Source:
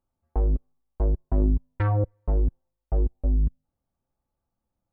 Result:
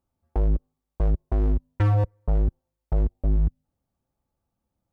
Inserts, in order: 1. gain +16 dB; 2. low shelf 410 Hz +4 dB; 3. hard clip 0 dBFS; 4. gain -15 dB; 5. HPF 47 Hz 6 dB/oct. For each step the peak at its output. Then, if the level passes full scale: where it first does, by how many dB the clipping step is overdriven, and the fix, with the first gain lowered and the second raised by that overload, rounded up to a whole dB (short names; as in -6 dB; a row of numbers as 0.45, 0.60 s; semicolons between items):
+5.0, +8.5, 0.0, -15.0, -12.0 dBFS; step 1, 8.5 dB; step 1 +7 dB, step 4 -6 dB